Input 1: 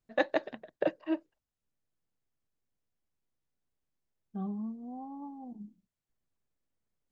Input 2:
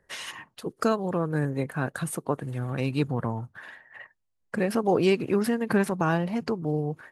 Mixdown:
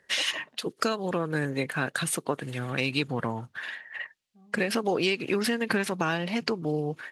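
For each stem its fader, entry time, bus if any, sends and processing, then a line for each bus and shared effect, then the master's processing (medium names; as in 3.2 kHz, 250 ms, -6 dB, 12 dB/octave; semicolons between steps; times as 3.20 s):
-10.0 dB, 0.00 s, no send, auto duck -11 dB, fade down 0.70 s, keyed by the second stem
+1.5 dB, 0.00 s, no send, frequency weighting D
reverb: none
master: compression 6:1, threshold -22 dBFS, peak gain reduction 9 dB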